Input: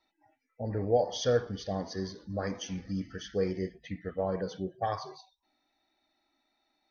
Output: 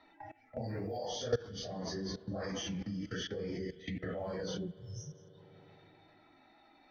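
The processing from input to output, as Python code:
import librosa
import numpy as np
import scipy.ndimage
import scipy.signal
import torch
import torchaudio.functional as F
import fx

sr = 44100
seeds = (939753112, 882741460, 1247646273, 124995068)

y = fx.phase_scramble(x, sr, seeds[0], window_ms=100)
y = fx.low_shelf(y, sr, hz=200.0, db=4.0)
y = fx.env_lowpass(y, sr, base_hz=2500.0, full_db=-27.5)
y = fx.low_shelf(y, sr, hz=87.0, db=-8.0)
y = fx.level_steps(y, sr, step_db=23)
y = fx.spec_erase(y, sr, start_s=4.67, length_s=0.67, low_hz=200.0, high_hz=5200.0)
y = fx.rev_spring(y, sr, rt60_s=2.3, pass_ms=(39, 52), chirp_ms=45, drr_db=19.5)
y = fx.band_squash(y, sr, depth_pct=70)
y = F.gain(torch.from_numpy(y), 7.0).numpy()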